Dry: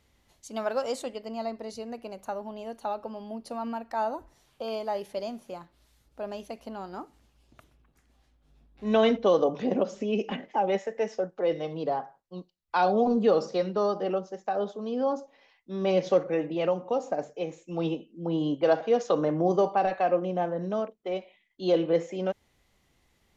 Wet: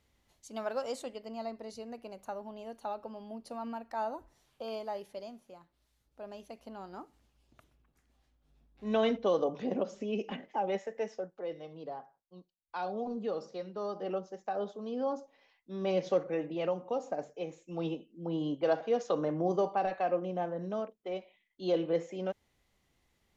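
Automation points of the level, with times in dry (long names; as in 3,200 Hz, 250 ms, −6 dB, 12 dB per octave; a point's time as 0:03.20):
0:04.77 −6 dB
0:05.55 −13 dB
0:06.87 −6.5 dB
0:11.01 −6.5 dB
0:11.54 −13 dB
0:13.71 −13 dB
0:14.16 −6 dB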